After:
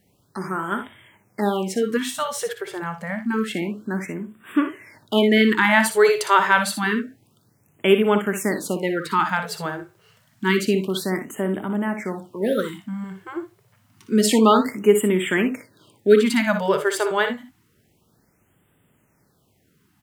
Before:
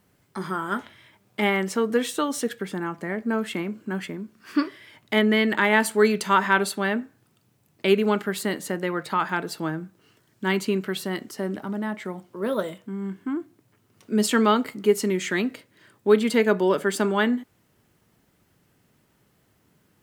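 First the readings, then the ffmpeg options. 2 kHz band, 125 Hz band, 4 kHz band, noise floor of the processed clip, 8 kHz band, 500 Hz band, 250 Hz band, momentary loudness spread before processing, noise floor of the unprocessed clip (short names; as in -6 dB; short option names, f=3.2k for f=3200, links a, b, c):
+3.0 dB, +3.0 dB, +3.0 dB, -64 dBFS, +3.5 dB, +3.5 dB, +3.0 dB, 12 LU, -65 dBFS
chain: -af "dynaudnorm=f=590:g=13:m=4dB,aecho=1:1:59|78:0.355|0.141,afftfilt=real='re*(1-between(b*sr/1024,230*pow(5300/230,0.5+0.5*sin(2*PI*0.28*pts/sr))/1.41,230*pow(5300/230,0.5+0.5*sin(2*PI*0.28*pts/sr))*1.41))':imag='im*(1-between(b*sr/1024,230*pow(5300/230,0.5+0.5*sin(2*PI*0.28*pts/sr))/1.41,230*pow(5300/230,0.5+0.5*sin(2*PI*0.28*pts/sr))*1.41))':win_size=1024:overlap=0.75,volume=1.5dB"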